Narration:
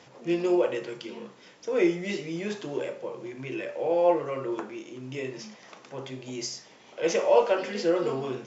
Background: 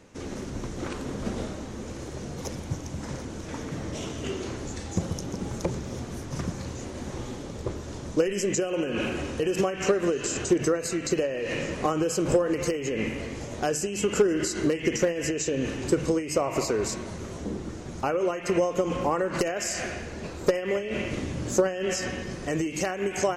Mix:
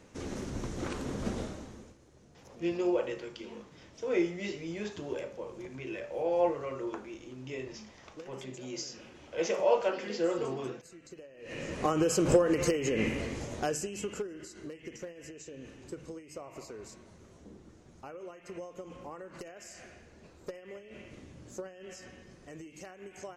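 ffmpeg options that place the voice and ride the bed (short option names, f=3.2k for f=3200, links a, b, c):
-filter_complex "[0:a]adelay=2350,volume=-5.5dB[a];[1:a]volume=19.5dB,afade=t=out:st=1.28:d=0.69:silence=0.0944061,afade=t=in:st=11.37:d=0.68:silence=0.0749894,afade=t=out:st=13.2:d=1.09:silence=0.125893[b];[a][b]amix=inputs=2:normalize=0"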